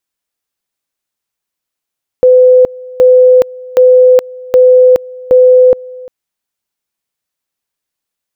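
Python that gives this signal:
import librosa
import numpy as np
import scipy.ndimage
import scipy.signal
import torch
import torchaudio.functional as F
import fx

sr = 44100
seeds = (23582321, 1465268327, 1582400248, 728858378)

y = fx.two_level_tone(sr, hz=506.0, level_db=-1.5, drop_db=23.0, high_s=0.42, low_s=0.35, rounds=5)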